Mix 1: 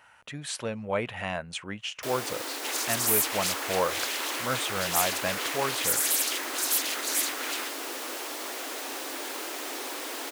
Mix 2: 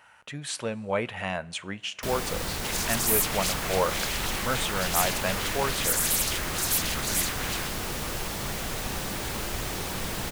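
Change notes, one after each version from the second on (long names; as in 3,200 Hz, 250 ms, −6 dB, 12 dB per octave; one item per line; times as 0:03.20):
first sound: remove Butterworth high-pass 260 Hz 96 dB per octave
reverb: on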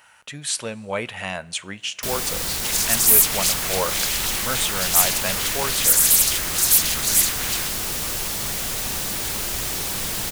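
master: add high-shelf EQ 3,200 Hz +11.5 dB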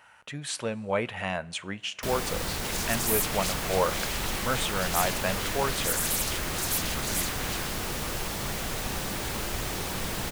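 second sound −3.5 dB
master: add high-shelf EQ 3,200 Hz −11.5 dB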